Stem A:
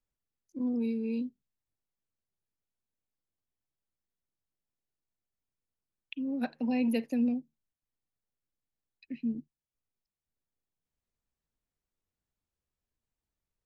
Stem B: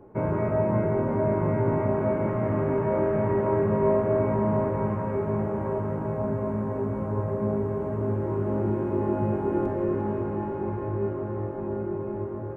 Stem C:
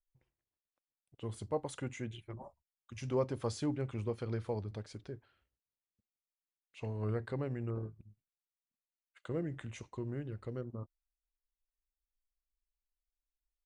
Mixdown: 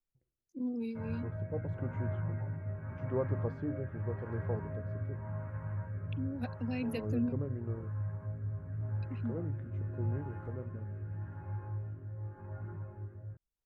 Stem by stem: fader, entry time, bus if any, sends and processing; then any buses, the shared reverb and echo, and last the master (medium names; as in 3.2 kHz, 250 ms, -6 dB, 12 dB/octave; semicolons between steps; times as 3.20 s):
-3.5 dB, 0.00 s, no send, reverb removal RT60 0.64 s
-14.5 dB, 0.80 s, no send, fifteen-band graphic EQ 100 Hz +12 dB, 400 Hz -12 dB, 1.6 kHz +11 dB; chorus voices 6, 0.7 Hz, delay 12 ms, depth 1.3 ms
-0.5 dB, 0.00 s, no send, low-pass 1.1 kHz 12 dB/octave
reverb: none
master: rotary cabinet horn 0.85 Hz